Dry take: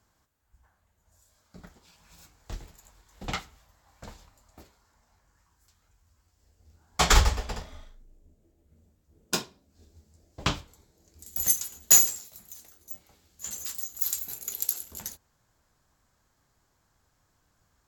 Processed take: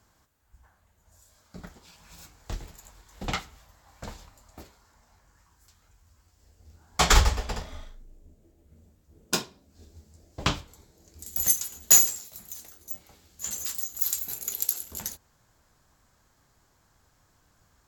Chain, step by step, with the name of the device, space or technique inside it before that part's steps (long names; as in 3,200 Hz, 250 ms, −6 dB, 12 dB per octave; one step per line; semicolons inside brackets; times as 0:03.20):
parallel compression (in parallel at −1.5 dB: downward compressor, threshold −38 dBFS, peak gain reduction 23.5 dB)